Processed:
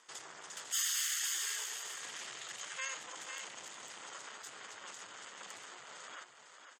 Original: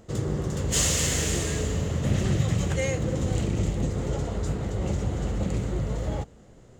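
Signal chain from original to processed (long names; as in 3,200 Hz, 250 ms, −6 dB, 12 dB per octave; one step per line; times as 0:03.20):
lower of the sound and its delayed copy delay 0.61 ms
in parallel at −1 dB: downward compressor, threshold −34 dBFS, peak gain reduction 14.5 dB
on the sum: soft clipping −23 dBFS, distortion −12 dB
high-pass filter 1,400 Hz 12 dB per octave
on a send: single-tap delay 501 ms −7.5 dB
on the sum: gate on every frequency bin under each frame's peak −20 dB strong
level −4 dB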